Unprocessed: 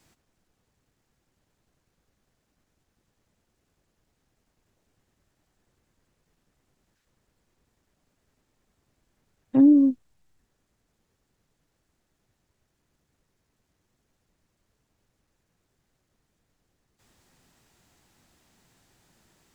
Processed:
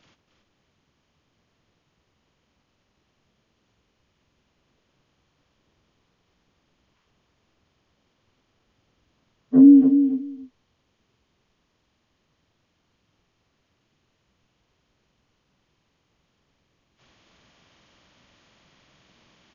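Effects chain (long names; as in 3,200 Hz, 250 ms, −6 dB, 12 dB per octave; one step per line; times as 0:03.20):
partials spread apart or drawn together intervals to 75%
repeating echo 277 ms, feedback 15%, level −8 dB
level +5.5 dB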